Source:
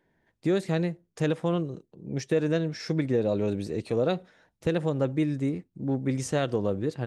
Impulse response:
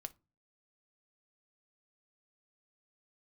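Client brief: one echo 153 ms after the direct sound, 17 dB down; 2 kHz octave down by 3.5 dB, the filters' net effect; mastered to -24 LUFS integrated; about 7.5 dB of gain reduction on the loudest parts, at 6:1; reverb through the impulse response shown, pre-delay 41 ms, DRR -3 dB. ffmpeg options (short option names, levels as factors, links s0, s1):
-filter_complex "[0:a]equalizer=f=2000:t=o:g=-4.5,acompressor=threshold=0.0355:ratio=6,aecho=1:1:153:0.141,asplit=2[s0][s1];[1:a]atrim=start_sample=2205,adelay=41[s2];[s1][s2]afir=irnorm=-1:irlink=0,volume=2.37[s3];[s0][s3]amix=inputs=2:normalize=0,volume=1.88"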